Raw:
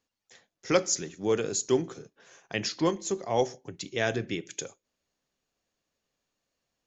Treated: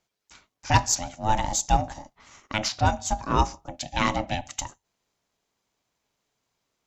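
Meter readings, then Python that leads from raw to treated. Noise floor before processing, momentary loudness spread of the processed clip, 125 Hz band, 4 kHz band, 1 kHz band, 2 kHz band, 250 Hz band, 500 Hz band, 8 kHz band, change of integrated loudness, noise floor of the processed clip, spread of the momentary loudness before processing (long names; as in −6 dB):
below −85 dBFS, 13 LU, +9.5 dB, +4.0 dB, +12.0 dB, +4.0 dB, −0.5 dB, −5.5 dB, can't be measured, +3.5 dB, −82 dBFS, 14 LU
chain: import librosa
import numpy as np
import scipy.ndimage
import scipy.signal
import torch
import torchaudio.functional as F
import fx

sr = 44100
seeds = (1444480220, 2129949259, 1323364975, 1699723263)

y = x * np.sin(2.0 * np.pi * 430.0 * np.arange(len(x)) / sr)
y = fx.cheby_harmonics(y, sr, harmonics=(6,), levels_db=(-32,), full_scale_db=-11.0)
y = y * librosa.db_to_amplitude(7.0)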